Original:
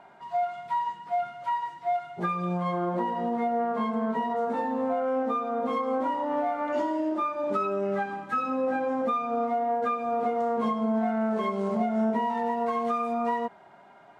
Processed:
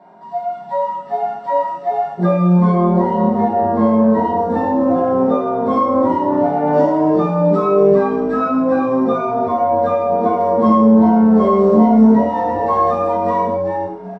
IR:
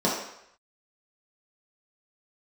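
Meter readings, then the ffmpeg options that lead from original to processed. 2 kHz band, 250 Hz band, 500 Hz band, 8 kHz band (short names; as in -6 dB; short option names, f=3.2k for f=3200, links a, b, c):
+5.0 dB, +16.0 dB, +13.5 dB, n/a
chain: -filter_complex "[0:a]asplit=5[a][b][c][d][e];[b]adelay=392,afreqshift=-140,volume=-6dB[f];[c]adelay=784,afreqshift=-280,volume=-16.5dB[g];[d]adelay=1176,afreqshift=-420,volume=-26.9dB[h];[e]adelay=1568,afreqshift=-560,volume=-37.4dB[i];[a][f][g][h][i]amix=inputs=5:normalize=0,dynaudnorm=f=190:g=11:m=3.5dB[j];[1:a]atrim=start_sample=2205,afade=t=out:st=0.17:d=0.01,atrim=end_sample=7938[k];[j][k]afir=irnorm=-1:irlink=0,volume=-9.5dB"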